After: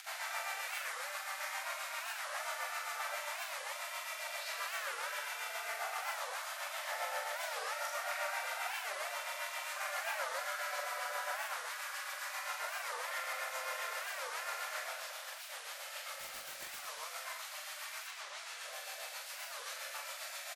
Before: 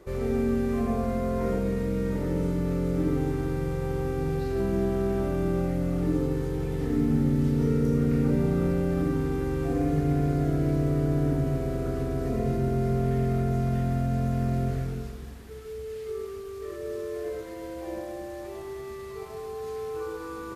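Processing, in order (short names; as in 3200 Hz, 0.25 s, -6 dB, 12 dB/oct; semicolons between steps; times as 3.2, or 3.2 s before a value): 18.07–18.71 LPF 5600 Hz -> 11000 Hz 12 dB/oct; spectral gate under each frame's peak -25 dB weak; elliptic high-pass 580 Hz, stop band 50 dB; upward compressor, threshold -50 dBFS; rotary speaker horn 7.5 Hz; 16.19–16.77 wrapped overs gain 48.5 dB; tube stage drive 24 dB, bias 0.2; loudspeakers at several distances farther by 15 m -5 dB, 82 m -11 dB; record warp 45 rpm, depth 250 cents; gain +10.5 dB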